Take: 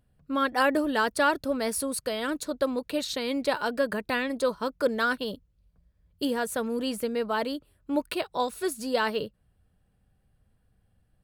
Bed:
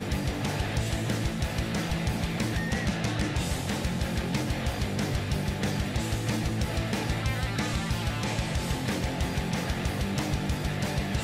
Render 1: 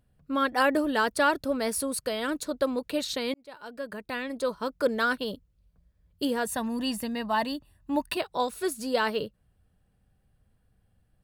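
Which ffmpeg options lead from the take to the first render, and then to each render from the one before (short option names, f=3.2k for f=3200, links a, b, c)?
-filter_complex "[0:a]asettb=1/sr,asplit=3[a][b][c];[a]atrim=end=6.454[d];[b]atrim=start=6.45:end=8.17,asetpts=PTS-STARTPTS,afade=t=in:d=0.004:c=qsin,afade=t=out:st=1.716:d=0.004:c=qsin,aecho=1:1:1.1:0.69,atrim=end_sample=75852[e];[c]atrim=start=8.166[f];[d][e]acrossfade=d=0.004:c1=hsin:c2=qsin[g];[g][f]acrossfade=d=0.004:c1=qsin:c2=hsin,asplit=2[h][i];[h]atrim=end=3.34,asetpts=PTS-STARTPTS,afade=t=out:st=3.336:d=0.004:c=hsin[j];[i]atrim=start=3.34,asetpts=PTS-STARTPTS,afade=t=in:d=1.53[k];[j][k]concat=n=2:v=0:a=1"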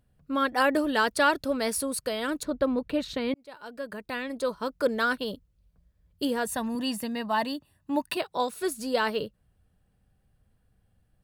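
-filter_complex "[0:a]asettb=1/sr,asplit=3[a][b][c];[a]atrim=end=0.744[d];[b]atrim=start=0.74:end=1.77,asetpts=PTS-STARTPTS,afade=t=in:d=0.004:c=qsin,afade=t=out:st=1.026:d=0.004:c=qsin,equalizer=f=3.6k:w=0.52:g=3[e];[c]atrim=start=1.766[f];[d][e]acrossfade=d=0.004:c1=hsin:c2=qsin[g];[g][f]acrossfade=d=0.004:c1=qsin:c2=hsin,asettb=1/sr,asplit=3[h][i][j];[h]atrim=end=2.434[k];[i]atrim=start=2.43:end=3.36,asetpts=PTS-STARTPTS,afade=t=in:d=0.004:c=qsin,afade=t=out:st=0.926:d=0.004:c=qsin,bass=f=250:g=8,treble=f=4k:g=-12[l];[j]atrim=start=3.356[m];[k][l]acrossfade=d=0.004:c1=hsin:c2=qsin[n];[n][m]acrossfade=d=0.004:c1=qsin:c2=hsin,asettb=1/sr,asplit=3[o][p][q];[o]atrim=end=6.754[r];[p]atrim=start=6.75:end=8.62,asetpts=PTS-STARTPTS,afade=t=in:d=0.004:c=qsin,afade=t=out:st=1.866:d=0.004:c=qsin,highpass=100[s];[q]atrim=start=8.616[t];[r][s]acrossfade=d=0.004:c1=hsin:c2=qsin[u];[u][t]acrossfade=d=0.004:c1=qsin:c2=hsin"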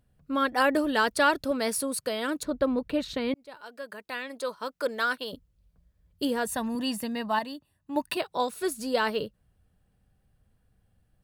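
-filter_complex "[0:a]asettb=1/sr,asplit=3[a][b][c];[a]atrim=end=1.514[d];[b]atrim=start=1.51:end=2.4,asetpts=PTS-STARTPTS,afade=t=in:d=0.004:c=qsin,afade=t=out:st=0.886:d=0.004:c=qsin,highpass=98[e];[c]atrim=start=2.396[f];[d][e]acrossfade=d=0.004:c1=hsin:c2=qsin[g];[g][f]acrossfade=d=0.004:c1=qsin:c2=hsin,asettb=1/sr,asplit=3[h][i][j];[h]atrim=end=3.614[k];[i]atrim=start=3.61:end=5.33,asetpts=PTS-STARTPTS,afade=t=in:d=0.004:c=qsin,afade=t=out:st=1.716:d=0.004:c=qsin,highpass=f=620:p=1[l];[j]atrim=start=5.326[m];[k][l]acrossfade=d=0.004:c1=hsin:c2=qsin[n];[n][m]acrossfade=d=0.004:c1=qsin:c2=hsin,asplit=3[o][p][q];[o]atrim=end=7.392[r];[p]atrim=start=7.388:end=7.962,asetpts=PTS-STARTPTS,volume=-6dB[s];[q]atrim=start=7.958[t];[r][s]acrossfade=d=0.004:c1=hsin:c2=hsin[u];[u][t]acrossfade=d=0.004:c1=hsin:c2=hsin"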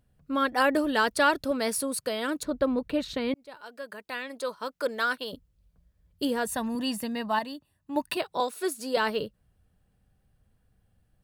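-filter_complex "[0:a]asettb=1/sr,asplit=3[a][b][c];[a]atrim=end=8.404[d];[b]atrim=start=8.4:end=8.97,asetpts=PTS-STARTPTS,afade=t=in:d=0.004:c=qsin,afade=t=out:st=0.566:d=0.004:c=qsin,highpass=f=260:w=0.5412,highpass=f=260:w=1.3066[e];[c]atrim=start=8.966[f];[d][e]acrossfade=d=0.004:c1=hsin:c2=qsin[g];[g][f]acrossfade=d=0.004:c1=qsin:c2=hsin"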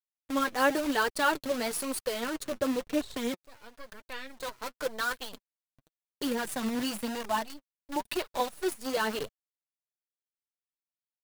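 -af "acrusher=bits=6:dc=4:mix=0:aa=0.000001,flanger=delay=1.6:depth=7.8:regen=26:speed=0.97:shape=triangular"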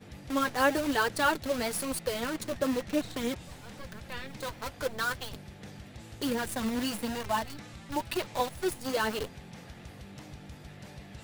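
-filter_complex "[1:a]volume=-17.5dB[a];[0:a][a]amix=inputs=2:normalize=0"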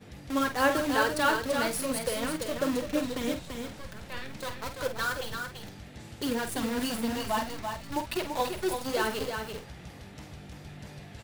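-filter_complex "[0:a]asplit=2[a][b];[b]adelay=48,volume=-9dB[c];[a][c]amix=inputs=2:normalize=0,aecho=1:1:337:0.501"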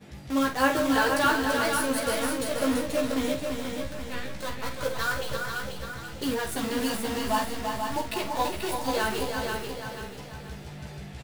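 -filter_complex "[0:a]asplit=2[a][b];[b]adelay=15,volume=-3dB[c];[a][c]amix=inputs=2:normalize=0,aecho=1:1:485|970|1455|1940:0.531|0.191|0.0688|0.0248"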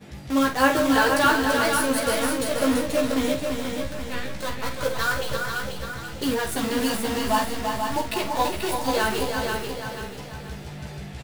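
-af "volume=4dB"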